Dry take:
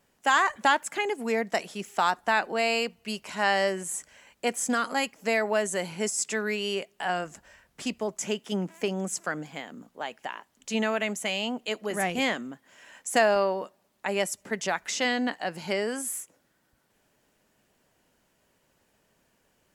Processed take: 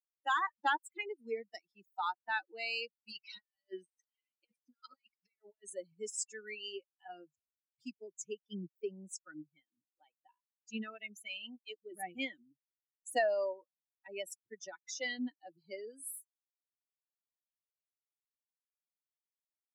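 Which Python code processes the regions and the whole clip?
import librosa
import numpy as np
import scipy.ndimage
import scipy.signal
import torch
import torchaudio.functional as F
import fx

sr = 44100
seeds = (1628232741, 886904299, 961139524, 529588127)

y = fx.chain(x, sr, fx.tilt_shelf(db=-5.5, hz=1200.0),
    fx.over_compress(threshold_db=-34.0, ratio=-0.5),
    fx.savgol(points=15), at=(3.12, 5.65))
y = fx.bin_expand(y, sr, power=3.0)
y = scipy.signal.sosfilt(scipy.signal.butter(2, 220.0, 'highpass', fs=sr, output='sos'), y)
y = F.gain(torch.from_numpy(y), -5.0).numpy()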